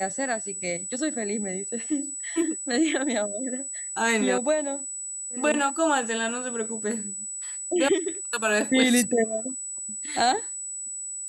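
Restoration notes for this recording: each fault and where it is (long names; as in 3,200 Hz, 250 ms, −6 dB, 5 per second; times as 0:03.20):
whistle 7,900 Hz −32 dBFS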